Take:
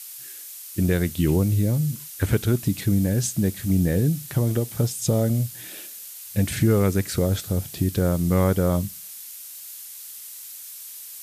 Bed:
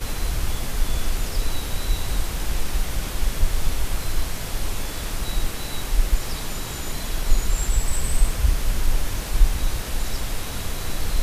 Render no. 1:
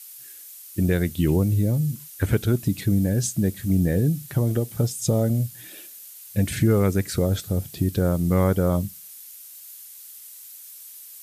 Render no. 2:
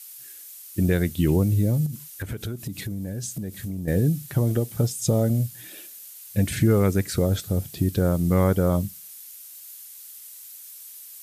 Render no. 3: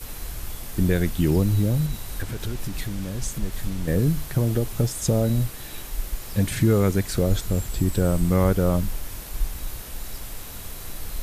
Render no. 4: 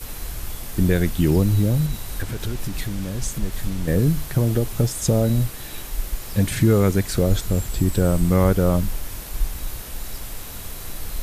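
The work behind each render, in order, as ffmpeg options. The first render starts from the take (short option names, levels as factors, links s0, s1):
-af "afftdn=nr=6:nf=-40"
-filter_complex "[0:a]asettb=1/sr,asplit=3[s0][s1][s2];[s0]atrim=end=1.864[s3];[s1]atrim=start=1.86:end=3.88,asetpts=PTS-STARTPTS,afade=t=in:d=0.004:c=qsin,afade=t=out:st=2.016:d=0.004:c=qsin,acompressor=threshold=0.0447:ratio=12:attack=3.2:release=140:knee=1:detection=peak[s4];[s2]atrim=start=3.876[s5];[s3][s4]acrossfade=d=0.004:c1=hsin:c2=qsin[s6];[s6][s5]acrossfade=d=0.004:c1=qsin:c2=hsin"
-filter_complex "[1:a]volume=0.335[s0];[0:a][s0]amix=inputs=2:normalize=0"
-af "volume=1.33"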